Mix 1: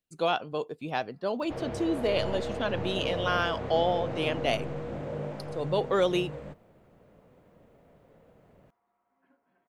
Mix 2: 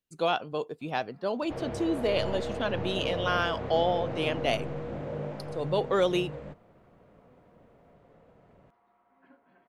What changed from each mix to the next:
first sound +9.0 dB
second sound: add high-frequency loss of the air 57 metres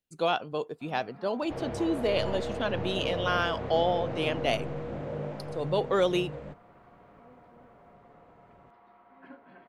first sound +10.0 dB

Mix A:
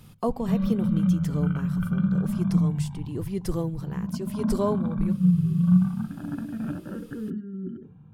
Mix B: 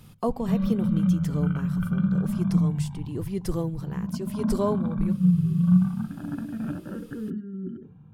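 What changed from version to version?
nothing changed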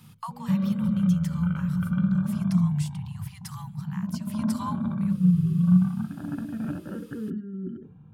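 speech: add Butterworth high-pass 820 Hz 96 dB per octave

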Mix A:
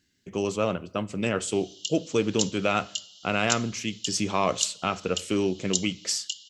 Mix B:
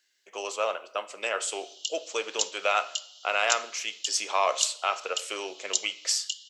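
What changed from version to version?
speech: send +8.0 dB
master: add high-pass filter 570 Hz 24 dB per octave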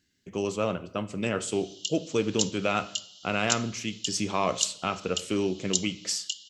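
speech −3.5 dB
master: remove high-pass filter 570 Hz 24 dB per octave

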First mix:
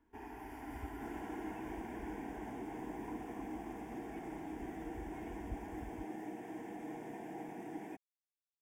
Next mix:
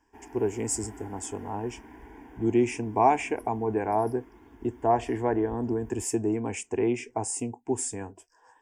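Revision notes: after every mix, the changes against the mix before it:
speech: unmuted
second sound: muted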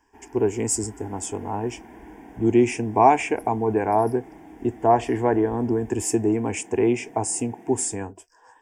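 speech +5.5 dB
second sound: unmuted

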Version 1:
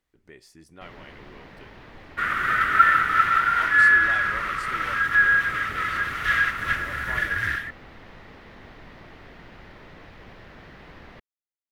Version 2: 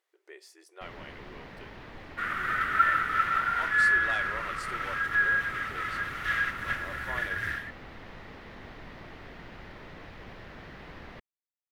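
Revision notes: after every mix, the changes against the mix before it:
speech: add linear-phase brick-wall high-pass 330 Hz
second sound −7.0 dB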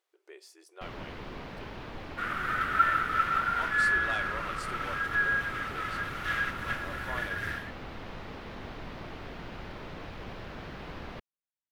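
first sound +4.5 dB
master: add parametric band 1,900 Hz −6.5 dB 0.32 octaves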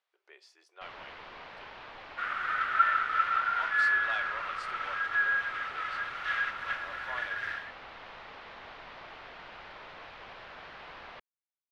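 master: add three-way crossover with the lows and the highs turned down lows −18 dB, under 580 Hz, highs −20 dB, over 5,400 Hz

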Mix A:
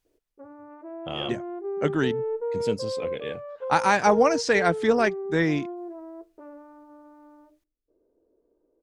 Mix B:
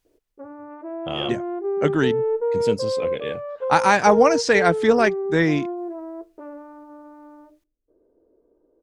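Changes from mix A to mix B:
speech +4.0 dB
background +6.5 dB

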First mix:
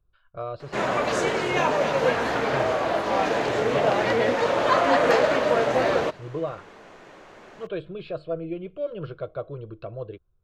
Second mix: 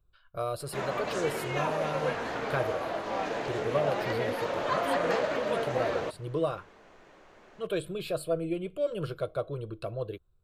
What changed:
speech: remove Gaussian smoothing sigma 2.3 samples
background −9.0 dB

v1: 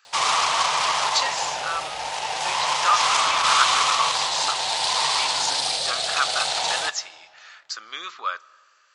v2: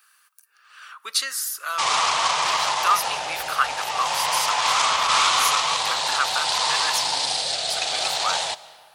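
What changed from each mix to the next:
speech: remove linear-phase brick-wall low-pass 7,800 Hz
background: entry +1.65 s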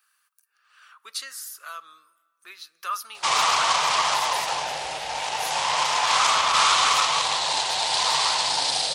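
speech −9.5 dB
background: entry +1.45 s

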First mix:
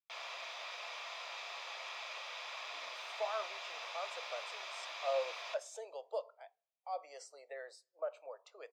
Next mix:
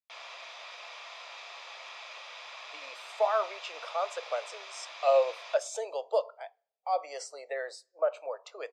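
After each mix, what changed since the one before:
speech +11.5 dB
master: add low-pass filter 11,000 Hz 12 dB per octave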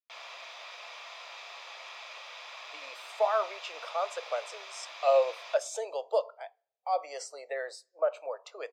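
master: remove low-pass filter 11,000 Hz 12 dB per octave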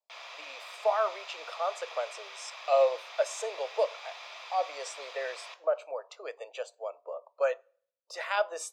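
speech: entry −2.35 s

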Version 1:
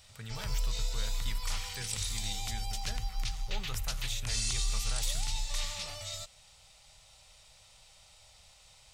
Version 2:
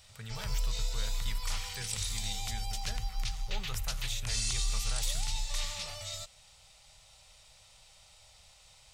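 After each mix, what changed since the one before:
master: add parametric band 290 Hz −7.5 dB 0.34 octaves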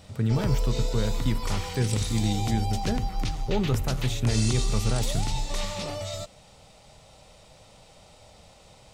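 speech: add parametric band 98 Hz +7.5 dB 1.4 octaves
master: remove guitar amp tone stack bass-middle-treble 10-0-10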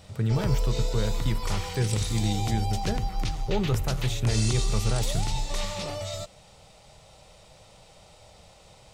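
master: add parametric band 250 Hz −8 dB 0.28 octaves

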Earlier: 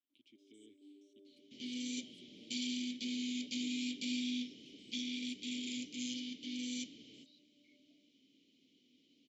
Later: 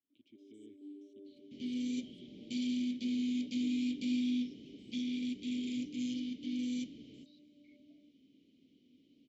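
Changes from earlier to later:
first sound +4.5 dB
master: add spectral tilt −3 dB per octave

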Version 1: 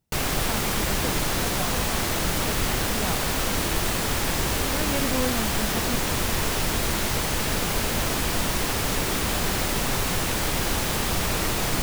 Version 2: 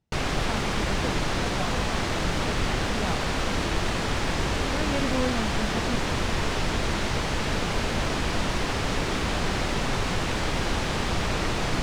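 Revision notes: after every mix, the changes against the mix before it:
master: add high-frequency loss of the air 97 metres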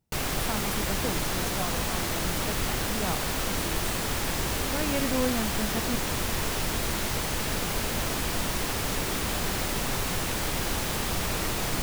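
background −4.0 dB
master: remove high-frequency loss of the air 97 metres

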